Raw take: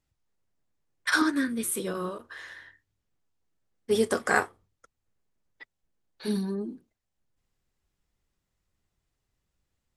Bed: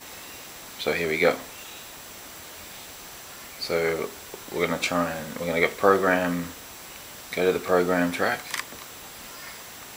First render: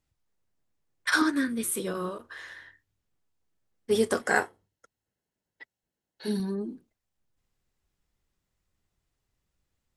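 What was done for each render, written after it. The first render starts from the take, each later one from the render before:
0:04.21–0:06.40: notch comb filter 1,200 Hz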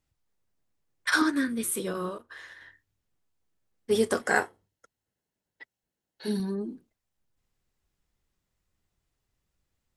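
0:02.15–0:02.61: expander for the loud parts, over −54 dBFS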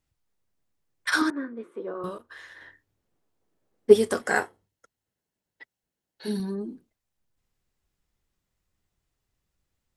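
0:01.30–0:02.04: flat-topped band-pass 620 Hz, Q 0.7
0:02.54–0:03.92: parametric band 440 Hz +7.5 dB → +14 dB 2.8 octaves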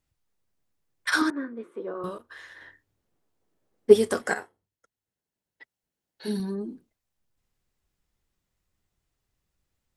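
0:04.34–0:06.26: fade in, from −12.5 dB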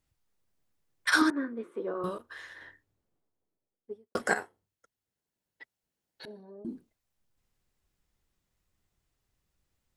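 0:02.38–0:04.15: fade out and dull
0:06.25–0:06.65: resonant band-pass 610 Hz, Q 5.4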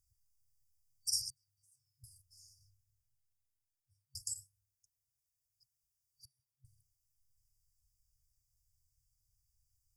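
brick-wall band-stop 130–4,600 Hz
high-shelf EQ 5,100 Hz +4 dB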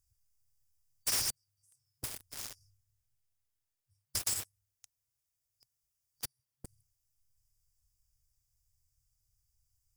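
leveller curve on the samples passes 5
every bin compressed towards the loudest bin 2 to 1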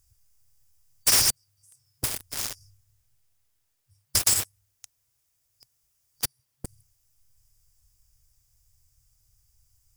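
level +12 dB

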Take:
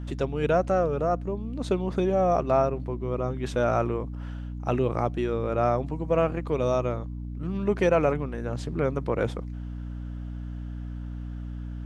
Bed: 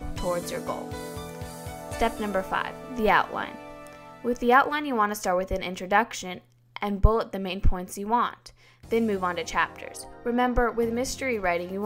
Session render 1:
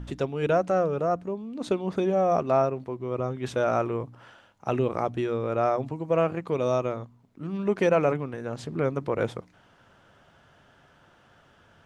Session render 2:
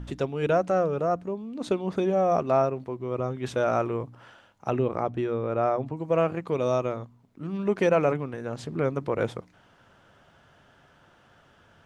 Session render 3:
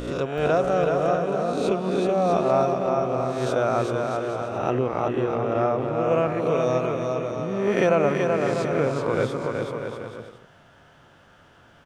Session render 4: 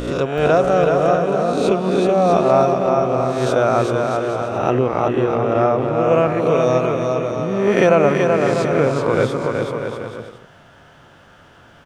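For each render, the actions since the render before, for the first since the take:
hum removal 60 Hz, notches 5
0:04.70–0:05.97: high-shelf EQ 3,300 Hz −9.5 dB
peak hold with a rise ahead of every peak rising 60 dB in 0.83 s; bouncing-ball delay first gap 380 ms, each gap 0.7×, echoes 5
level +6.5 dB

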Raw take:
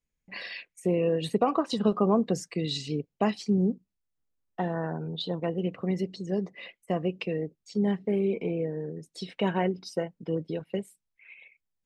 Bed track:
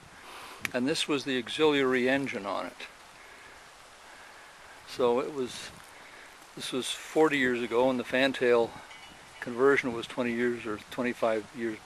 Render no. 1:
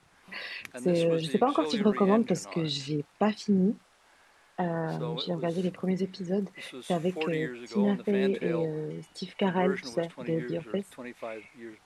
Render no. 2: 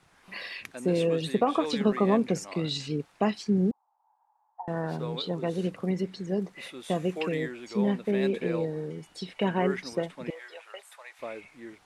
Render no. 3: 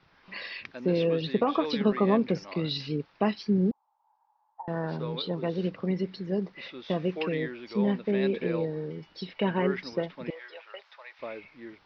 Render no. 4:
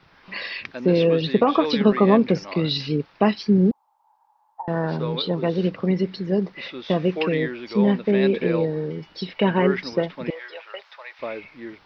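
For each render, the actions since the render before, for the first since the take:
mix in bed track −11 dB
0:03.71–0:04.68: flat-topped band-pass 870 Hz, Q 4.8; 0:10.30–0:11.19: inverse Chebyshev high-pass filter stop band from 260 Hz, stop band 50 dB
Butterworth low-pass 5,400 Hz 72 dB per octave; notch filter 730 Hz, Q 12
level +7.5 dB

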